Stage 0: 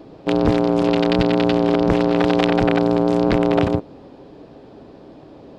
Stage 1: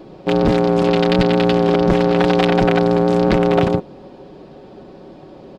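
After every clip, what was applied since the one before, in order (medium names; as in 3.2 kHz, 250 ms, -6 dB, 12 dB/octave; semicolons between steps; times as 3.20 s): comb 5.4 ms, depth 44%; in parallel at -10 dB: wavefolder -9.5 dBFS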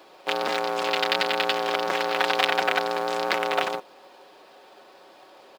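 high-pass 1 kHz 12 dB/octave; in parallel at -9 dB: companded quantiser 4-bit; on the sum: trim -2 dB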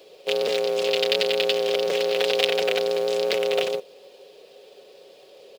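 FFT filter 160 Hz 0 dB, 320 Hz -8 dB, 450 Hz +11 dB, 860 Hz -14 dB, 1.5 kHz -13 dB, 2.8 kHz +1 dB; trim +1.5 dB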